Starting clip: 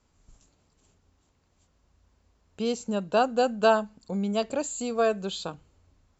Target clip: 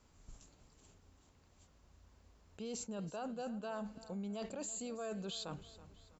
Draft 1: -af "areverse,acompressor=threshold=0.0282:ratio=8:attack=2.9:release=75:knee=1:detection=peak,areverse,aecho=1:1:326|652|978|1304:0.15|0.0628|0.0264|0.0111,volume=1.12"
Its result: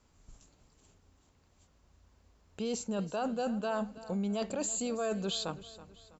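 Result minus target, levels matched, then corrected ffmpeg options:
compression: peak gain reduction -9 dB
-af "areverse,acompressor=threshold=0.00841:ratio=8:attack=2.9:release=75:knee=1:detection=peak,areverse,aecho=1:1:326|652|978|1304:0.15|0.0628|0.0264|0.0111,volume=1.12"

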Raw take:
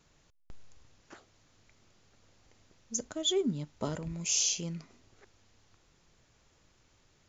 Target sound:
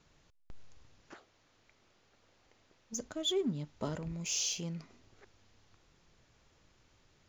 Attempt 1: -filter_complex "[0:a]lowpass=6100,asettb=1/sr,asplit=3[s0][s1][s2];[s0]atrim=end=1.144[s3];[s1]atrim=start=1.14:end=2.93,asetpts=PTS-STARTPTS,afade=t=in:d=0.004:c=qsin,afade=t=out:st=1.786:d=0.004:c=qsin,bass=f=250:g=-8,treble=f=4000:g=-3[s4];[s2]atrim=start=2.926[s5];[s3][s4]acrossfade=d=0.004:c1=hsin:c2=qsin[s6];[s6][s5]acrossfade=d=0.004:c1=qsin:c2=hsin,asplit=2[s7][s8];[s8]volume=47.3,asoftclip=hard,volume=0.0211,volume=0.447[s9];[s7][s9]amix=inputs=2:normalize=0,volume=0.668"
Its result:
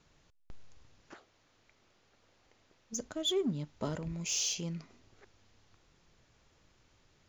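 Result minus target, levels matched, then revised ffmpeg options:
overload inside the chain: distortion -4 dB
-filter_complex "[0:a]lowpass=6100,asettb=1/sr,asplit=3[s0][s1][s2];[s0]atrim=end=1.144[s3];[s1]atrim=start=1.14:end=2.93,asetpts=PTS-STARTPTS,afade=t=in:d=0.004:c=qsin,afade=t=out:st=1.786:d=0.004:c=qsin,bass=f=250:g=-8,treble=f=4000:g=-3[s4];[s2]atrim=start=2.926[s5];[s3][s4]acrossfade=d=0.004:c1=hsin:c2=qsin[s6];[s6][s5]acrossfade=d=0.004:c1=qsin:c2=hsin,asplit=2[s7][s8];[s8]volume=119,asoftclip=hard,volume=0.00841,volume=0.447[s9];[s7][s9]amix=inputs=2:normalize=0,volume=0.668"

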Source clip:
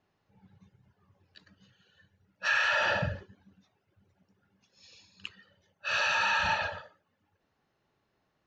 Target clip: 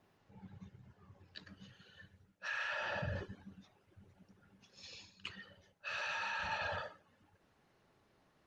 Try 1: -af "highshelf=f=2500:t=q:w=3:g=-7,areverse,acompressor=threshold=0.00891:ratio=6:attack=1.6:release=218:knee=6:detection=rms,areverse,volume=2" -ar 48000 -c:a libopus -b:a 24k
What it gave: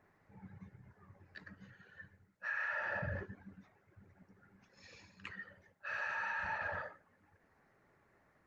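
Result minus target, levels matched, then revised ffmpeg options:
4 kHz band -13.0 dB
-af "areverse,acompressor=threshold=0.00891:ratio=6:attack=1.6:release=218:knee=6:detection=rms,areverse,volume=2" -ar 48000 -c:a libopus -b:a 24k

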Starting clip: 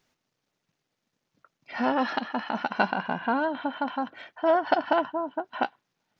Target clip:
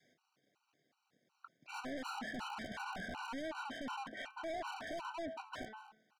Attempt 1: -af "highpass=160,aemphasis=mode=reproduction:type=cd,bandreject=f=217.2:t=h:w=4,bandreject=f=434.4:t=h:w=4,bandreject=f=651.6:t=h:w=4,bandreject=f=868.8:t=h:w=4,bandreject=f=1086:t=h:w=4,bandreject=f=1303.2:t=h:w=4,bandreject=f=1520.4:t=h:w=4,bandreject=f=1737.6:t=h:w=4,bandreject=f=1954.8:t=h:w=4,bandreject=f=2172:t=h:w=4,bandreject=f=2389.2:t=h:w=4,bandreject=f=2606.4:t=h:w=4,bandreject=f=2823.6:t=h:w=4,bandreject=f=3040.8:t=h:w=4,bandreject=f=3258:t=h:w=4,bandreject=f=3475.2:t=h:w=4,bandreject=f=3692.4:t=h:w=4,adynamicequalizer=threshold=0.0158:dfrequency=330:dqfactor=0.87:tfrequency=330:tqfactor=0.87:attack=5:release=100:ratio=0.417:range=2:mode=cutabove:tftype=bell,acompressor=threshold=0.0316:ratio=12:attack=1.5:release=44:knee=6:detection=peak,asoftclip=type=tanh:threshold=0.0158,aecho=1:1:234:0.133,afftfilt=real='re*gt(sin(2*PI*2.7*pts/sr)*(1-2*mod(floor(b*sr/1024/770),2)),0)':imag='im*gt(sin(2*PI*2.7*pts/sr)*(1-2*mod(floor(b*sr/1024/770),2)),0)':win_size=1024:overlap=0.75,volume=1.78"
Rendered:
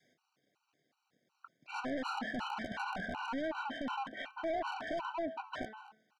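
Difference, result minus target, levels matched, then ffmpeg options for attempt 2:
saturation: distortion -5 dB
-af "highpass=160,aemphasis=mode=reproduction:type=cd,bandreject=f=217.2:t=h:w=4,bandreject=f=434.4:t=h:w=4,bandreject=f=651.6:t=h:w=4,bandreject=f=868.8:t=h:w=4,bandreject=f=1086:t=h:w=4,bandreject=f=1303.2:t=h:w=4,bandreject=f=1520.4:t=h:w=4,bandreject=f=1737.6:t=h:w=4,bandreject=f=1954.8:t=h:w=4,bandreject=f=2172:t=h:w=4,bandreject=f=2389.2:t=h:w=4,bandreject=f=2606.4:t=h:w=4,bandreject=f=2823.6:t=h:w=4,bandreject=f=3040.8:t=h:w=4,bandreject=f=3258:t=h:w=4,bandreject=f=3475.2:t=h:w=4,bandreject=f=3692.4:t=h:w=4,adynamicequalizer=threshold=0.0158:dfrequency=330:dqfactor=0.87:tfrequency=330:tqfactor=0.87:attack=5:release=100:ratio=0.417:range=2:mode=cutabove:tftype=bell,acompressor=threshold=0.0316:ratio=12:attack=1.5:release=44:knee=6:detection=peak,asoftclip=type=tanh:threshold=0.00668,aecho=1:1:234:0.133,afftfilt=real='re*gt(sin(2*PI*2.7*pts/sr)*(1-2*mod(floor(b*sr/1024/770),2)),0)':imag='im*gt(sin(2*PI*2.7*pts/sr)*(1-2*mod(floor(b*sr/1024/770),2)),0)':win_size=1024:overlap=0.75,volume=1.78"

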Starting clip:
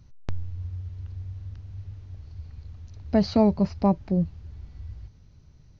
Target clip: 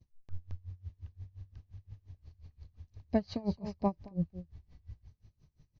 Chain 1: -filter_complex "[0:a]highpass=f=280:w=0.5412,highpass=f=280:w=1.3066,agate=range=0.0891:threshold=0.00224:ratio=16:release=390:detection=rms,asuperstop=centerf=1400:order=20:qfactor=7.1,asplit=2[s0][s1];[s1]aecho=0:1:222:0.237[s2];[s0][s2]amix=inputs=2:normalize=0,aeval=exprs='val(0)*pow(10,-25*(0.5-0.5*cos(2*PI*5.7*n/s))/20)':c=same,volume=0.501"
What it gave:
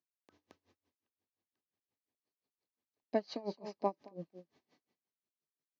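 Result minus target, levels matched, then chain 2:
250 Hz band -8.0 dB
-filter_complex "[0:a]agate=range=0.0891:threshold=0.00224:ratio=16:release=390:detection=rms,asuperstop=centerf=1400:order=20:qfactor=7.1,asplit=2[s0][s1];[s1]aecho=0:1:222:0.237[s2];[s0][s2]amix=inputs=2:normalize=0,aeval=exprs='val(0)*pow(10,-25*(0.5-0.5*cos(2*PI*5.7*n/s))/20)':c=same,volume=0.501"

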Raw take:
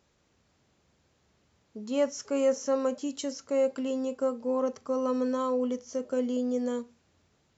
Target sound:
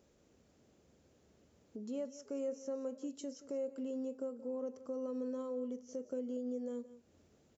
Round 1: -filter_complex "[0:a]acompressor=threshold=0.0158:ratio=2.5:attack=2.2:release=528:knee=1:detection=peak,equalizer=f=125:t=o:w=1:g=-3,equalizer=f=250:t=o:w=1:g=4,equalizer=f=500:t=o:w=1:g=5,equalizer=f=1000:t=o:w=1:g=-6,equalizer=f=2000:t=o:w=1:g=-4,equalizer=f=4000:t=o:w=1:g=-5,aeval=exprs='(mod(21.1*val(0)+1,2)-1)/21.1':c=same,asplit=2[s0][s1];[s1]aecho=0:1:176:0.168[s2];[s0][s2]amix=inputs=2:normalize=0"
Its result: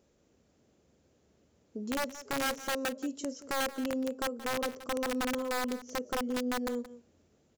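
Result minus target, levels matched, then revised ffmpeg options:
compression: peak gain reduction -7 dB
-filter_complex "[0:a]acompressor=threshold=0.00422:ratio=2.5:attack=2.2:release=528:knee=1:detection=peak,equalizer=f=125:t=o:w=1:g=-3,equalizer=f=250:t=o:w=1:g=4,equalizer=f=500:t=o:w=1:g=5,equalizer=f=1000:t=o:w=1:g=-6,equalizer=f=2000:t=o:w=1:g=-4,equalizer=f=4000:t=o:w=1:g=-5,aeval=exprs='(mod(21.1*val(0)+1,2)-1)/21.1':c=same,asplit=2[s0][s1];[s1]aecho=0:1:176:0.168[s2];[s0][s2]amix=inputs=2:normalize=0"

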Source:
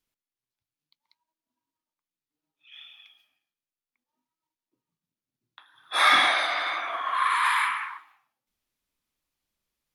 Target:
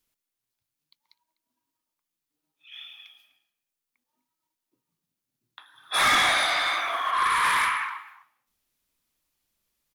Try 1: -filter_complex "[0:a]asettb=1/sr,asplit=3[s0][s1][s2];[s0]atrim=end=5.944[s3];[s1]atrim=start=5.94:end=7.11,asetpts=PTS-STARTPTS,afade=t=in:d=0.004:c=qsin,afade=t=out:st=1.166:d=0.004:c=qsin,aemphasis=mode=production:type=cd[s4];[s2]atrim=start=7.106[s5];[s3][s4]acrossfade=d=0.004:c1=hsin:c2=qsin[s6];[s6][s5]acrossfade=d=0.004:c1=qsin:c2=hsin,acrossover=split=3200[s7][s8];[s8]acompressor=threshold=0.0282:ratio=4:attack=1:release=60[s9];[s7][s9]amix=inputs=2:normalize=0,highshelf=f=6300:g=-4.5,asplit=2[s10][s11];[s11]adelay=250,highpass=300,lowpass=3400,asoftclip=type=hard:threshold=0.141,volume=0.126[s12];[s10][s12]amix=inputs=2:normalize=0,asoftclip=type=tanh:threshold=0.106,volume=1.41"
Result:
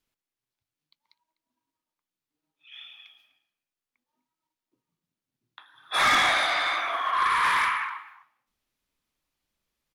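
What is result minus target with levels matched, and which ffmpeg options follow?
8 kHz band -4.0 dB
-filter_complex "[0:a]asettb=1/sr,asplit=3[s0][s1][s2];[s0]atrim=end=5.944[s3];[s1]atrim=start=5.94:end=7.11,asetpts=PTS-STARTPTS,afade=t=in:d=0.004:c=qsin,afade=t=out:st=1.166:d=0.004:c=qsin,aemphasis=mode=production:type=cd[s4];[s2]atrim=start=7.106[s5];[s3][s4]acrossfade=d=0.004:c1=hsin:c2=qsin[s6];[s6][s5]acrossfade=d=0.004:c1=qsin:c2=hsin,acrossover=split=3200[s7][s8];[s8]acompressor=threshold=0.0282:ratio=4:attack=1:release=60[s9];[s7][s9]amix=inputs=2:normalize=0,highshelf=f=6300:g=6.5,asplit=2[s10][s11];[s11]adelay=250,highpass=300,lowpass=3400,asoftclip=type=hard:threshold=0.141,volume=0.126[s12];[s10][s12]amix=inputs=2:normalize=0,asoftclip=type=tanh:threshold=0.106,volume=1.41"

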